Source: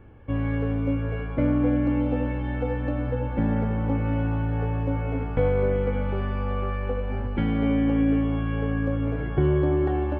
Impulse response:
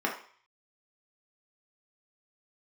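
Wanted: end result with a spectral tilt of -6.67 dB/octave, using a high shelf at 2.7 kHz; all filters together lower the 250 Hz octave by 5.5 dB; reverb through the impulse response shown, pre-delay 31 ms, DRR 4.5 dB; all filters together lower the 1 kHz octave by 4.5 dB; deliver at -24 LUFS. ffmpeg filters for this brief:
-filter_complex "[0:a]equalizer=f=250:t=o:g=-6.5,equalizer=f=1000:t=o:g=-6,highshelf=f=2700:g=3.5,asplit=2[s0][s1];[1:a]atrim=start_sample=2205,adelay=31[s2];[s1][s2]afir=irnorm=-1:irlink=0,volume=0.188[s3];[s0][s3]amix=inputs=2:normalize=0,volume=1.58"

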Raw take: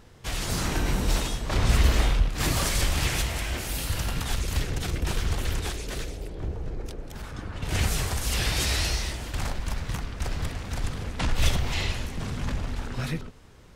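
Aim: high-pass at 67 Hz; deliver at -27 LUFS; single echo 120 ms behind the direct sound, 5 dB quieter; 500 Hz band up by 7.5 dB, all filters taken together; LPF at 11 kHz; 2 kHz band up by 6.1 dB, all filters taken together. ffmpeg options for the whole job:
-af "highpass=67,lowpass=11000,equalizer=f=500:t=o:g=9,equalizer=f=2000:t=o:g=7,aecho=1:1:120:0.562,volume=0.891"

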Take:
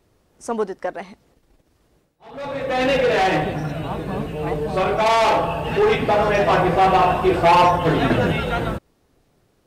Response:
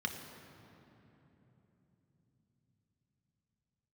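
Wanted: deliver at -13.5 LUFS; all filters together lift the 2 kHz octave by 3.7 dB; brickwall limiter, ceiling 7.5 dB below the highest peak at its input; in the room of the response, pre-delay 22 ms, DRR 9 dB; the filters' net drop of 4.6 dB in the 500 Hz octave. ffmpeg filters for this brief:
-filter_complex "[0:a]equalizer=f=500:t=o:g=-6.5,equalizer=f=2000:t=o:g=5,alimiter=limit=0.224:level=0:latency=1,asplit=2[s0][s1];[1:a]atrim=start_sample=2205,adelay=22[s2];[s1][s2]afir=irnorm=-1:irlink=0,volume=0.237[s3];[s0][s3]amix=inputs=2:normalize=0,volume=2.66"

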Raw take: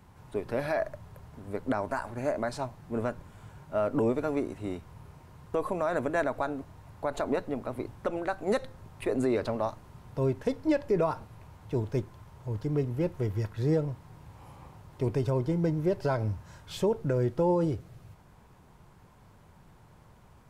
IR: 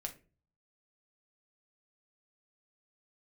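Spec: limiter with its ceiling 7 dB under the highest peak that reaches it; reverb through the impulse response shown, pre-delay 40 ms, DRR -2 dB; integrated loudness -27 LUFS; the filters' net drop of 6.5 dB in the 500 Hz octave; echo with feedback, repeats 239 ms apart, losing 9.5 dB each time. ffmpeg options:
-filter_complex "[0:a]equalizer=f=500:t=o:g=-8.5,alimiter=level_in=1.12:limit=0.0631:level=0:latency=1,volume=0.891,aecho=1:1:239|478|717|956:0.335|0.111|0.0365|0.012,asplit=2[s0][s1];[1:a]atrim=start_sample=2205,adelay=40[s2];[s1][s2]afir=irnorm=-1:irlink=0,volume=1.5[s3];[s0][s3]amix=inputs=2:normalize=0,volume=1.68"

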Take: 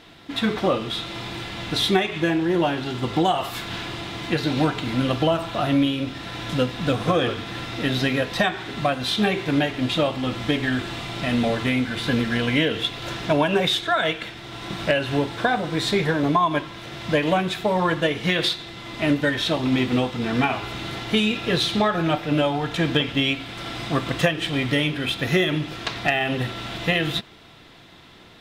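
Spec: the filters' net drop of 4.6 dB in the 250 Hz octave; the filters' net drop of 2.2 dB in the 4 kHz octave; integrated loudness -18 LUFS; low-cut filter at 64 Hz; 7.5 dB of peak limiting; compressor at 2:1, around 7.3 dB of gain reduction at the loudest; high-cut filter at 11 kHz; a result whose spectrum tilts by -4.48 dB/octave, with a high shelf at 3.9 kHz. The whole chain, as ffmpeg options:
-af "highpass=64,lowpass=11000,equalizer=f=250:t=o:g=-6,highshelf=f=3900:g=6,equalizer=f=4000:t=o:g=-6,acompressor=threshold=0.0316:ratio=2,volume=4.73,alimiter=limit=0.422:level=0:latency=1"

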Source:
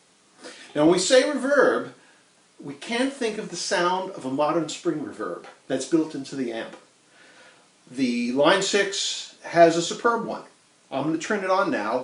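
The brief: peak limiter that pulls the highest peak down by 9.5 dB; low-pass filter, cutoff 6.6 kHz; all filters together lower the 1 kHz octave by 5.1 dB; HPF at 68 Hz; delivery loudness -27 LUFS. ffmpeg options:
-af "highpass=68,lowpass=6600,equalizer=f=1000:t=o:g=-7.5,volume=1.06,alimiter=limit=0.178:level=0:latency=1"

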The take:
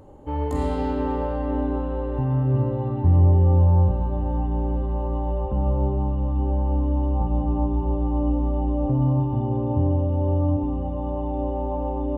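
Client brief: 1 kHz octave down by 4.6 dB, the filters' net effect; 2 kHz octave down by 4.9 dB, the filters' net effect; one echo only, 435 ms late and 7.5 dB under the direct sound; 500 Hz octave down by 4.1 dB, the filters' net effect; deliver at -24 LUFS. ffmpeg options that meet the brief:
-af "equalizer=f=500:t=o:g=-4,equalizer=f=1000:t=o:g=-3.5,equalizer=f=2000:t=o:g=-5,aecho=1:1:435:0.422,volume=0.891"

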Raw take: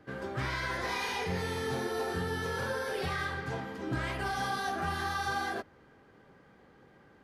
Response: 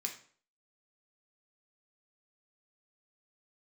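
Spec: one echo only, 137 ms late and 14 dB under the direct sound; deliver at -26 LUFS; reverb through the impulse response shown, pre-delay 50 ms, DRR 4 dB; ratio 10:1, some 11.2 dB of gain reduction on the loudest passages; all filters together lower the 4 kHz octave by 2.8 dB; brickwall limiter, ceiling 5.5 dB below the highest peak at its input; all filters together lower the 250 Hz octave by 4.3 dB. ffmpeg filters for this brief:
-filter_complex "[0:a]equalizer=f=250:t=o:g=-6.5,equalizer=f=4000:t=o:g=-3.5,acompressor=threshold=0.00794:ratio=10,alimiter=level_in=5.62:limit=0.0631:level=0:latency=1,volume=0.178,aecho=1:1:137:0.2,asplit=2[s0][s1];[1:a]atrim=start_sample=2205,adelay=50[s2];[s1][s2]afir=irnorm=-1:irlink=0,volume=0.631[s3];[s0][s3]amix=inputs=2:normalize=0,volume=10"

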